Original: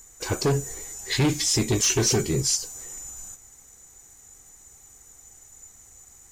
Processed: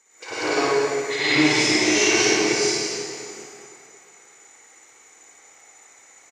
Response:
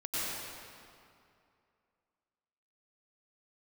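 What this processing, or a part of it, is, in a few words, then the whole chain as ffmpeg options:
station announcement: -filter_complex "[0:a]highpass=440,lowpass=4.6k,equalizer=f=2.2k:t=o:w=0.27:g=9,aecho=1:1:55.39|221.6:0.891|0.355[a];[1:a]atrim=start_sample=2205[b];[a][b]afir=irnorm=-1:irlink=0,asettb=1/sr,asplit=3[c][d][e];[c]atrim=end=1.354[f];[d]atrim=start=1.35:end=1.76,asetpts=PTS-STARTPTS,afade=t=in:d=0.004:c=qsin,afade=t=out:st=0.406:d=0.004:c=qsin,lowshelf=f=180:g=8.5[g];[e]atrim=start=1.756[h];[f][g]acrossfade=d=0.004:c1=hsin:c2=qsin[i];[i][h]acrossfade=d=0.004:c1=qsin:c2=hsin"

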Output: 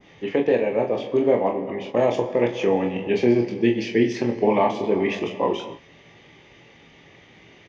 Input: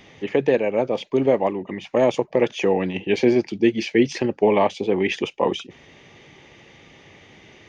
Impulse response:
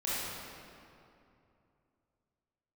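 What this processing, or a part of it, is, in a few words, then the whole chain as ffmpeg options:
keyed gated reverb: -filter_complex "[0:a]lowpass=6k,adynamicequalizer=threshold=0.00891:dfrequency=3500:dqfactor=0.7:tfrequency=3500:tqfactor=0.7:attack=5:release=100:ratio=0.375:range=2.5:mode=cutabove:tftype=bell,asplit=3[a][b][c];[1:a]atrim=start_sample=2205[d];[b][d]afir=irnorm=-1:irlink=0[e];[c]apad=whole_len=338925[f];[e][f]sidechaingate=range=-33dB:threshold=-41dB:ratio=16:detection=peak,volume=-15dB[g];[a][g]amix=inputs=2:normalize=0,asplit=2[h][i];[i]adelay=18,volume=-11dB[j];[h][j]amix=inputs=2:normalize=0,aecho=1:1:25|42:0.501|0.355,volume=-3.5dB"

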